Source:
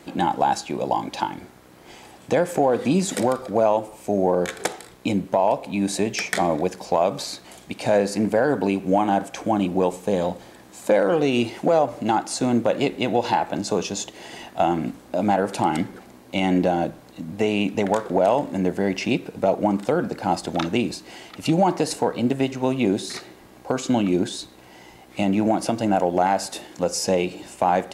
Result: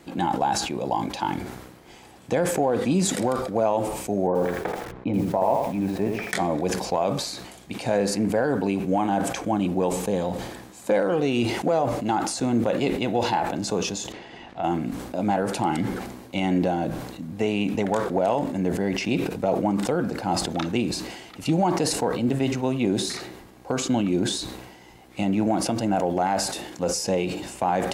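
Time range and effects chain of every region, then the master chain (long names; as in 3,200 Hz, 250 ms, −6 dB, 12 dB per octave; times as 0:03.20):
0:04.27–0:06.31: low-pass filter 1,600 Hz + feedback echo at a low word length 82 ms, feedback 35%, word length 7 bits, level −4 dB
0:14.12–0:14.64: downward compressor 2 to 1, threshold −25 dBFS + centre clipping without the shift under −45.5 dBFS + low-pass filter 3,400 Hz
whole clip: low-shelf EQ 160 Hz +5 dB; notch filter 610 Hz, Q 20; level that may fall only so fast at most 48 dB per second; level −4 dB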